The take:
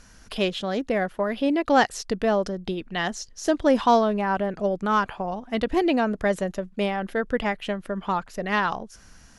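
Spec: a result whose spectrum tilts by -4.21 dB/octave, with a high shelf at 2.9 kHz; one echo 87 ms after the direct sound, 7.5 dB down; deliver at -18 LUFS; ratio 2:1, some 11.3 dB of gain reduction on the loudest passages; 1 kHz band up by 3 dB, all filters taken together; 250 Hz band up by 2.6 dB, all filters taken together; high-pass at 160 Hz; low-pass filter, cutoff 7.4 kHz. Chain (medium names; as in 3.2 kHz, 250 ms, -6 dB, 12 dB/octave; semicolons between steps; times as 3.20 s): high-pass 160 Hz; low-pass 7.4 kHz; peaking EQ 250 Hz +4 dB; peaking EQ 1 kHz +4 dB; treble shelf 2.9 kHz -3 dB; compression 2:1, threshold -32 dBFS; delay 87 ms -7.5 dB; trim +12.5 dB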